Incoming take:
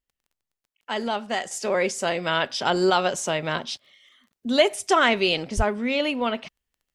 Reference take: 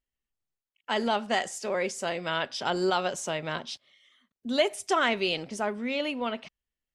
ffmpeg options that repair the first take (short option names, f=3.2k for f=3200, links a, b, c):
-filter_complex "[0:a]adeclick=t=4,asplit=3[a][b][c];[a]afade=t=out:st=5.56:d=0.02[d];[b]highpass=f=140:w=0.5412,highpass=f=140:w=1.3066,afade=t=in:st=5.56:d=0.02,afade=t=out:st=5.68:d=0.02[e];[c]afade=t=in:st=5.68:d=0.02[f];[d][e][f]amix=inputs=3:normalize=0,asetnsamples=n=441:p=0,asendcmd='1.51 volume volume -6dB',volume=0dB"